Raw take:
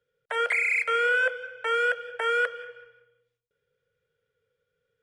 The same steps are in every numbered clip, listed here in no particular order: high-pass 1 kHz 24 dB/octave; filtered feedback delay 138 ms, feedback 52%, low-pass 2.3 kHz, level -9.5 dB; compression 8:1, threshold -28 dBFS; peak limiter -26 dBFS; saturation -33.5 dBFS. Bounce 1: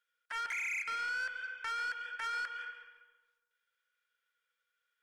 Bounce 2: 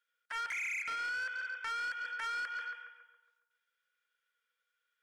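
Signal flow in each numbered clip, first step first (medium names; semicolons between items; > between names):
compression > high-pass > peak limiter > saturation > filtered feedback delay; filtered feedback delay > compression > high-pass > peak limiter > saturation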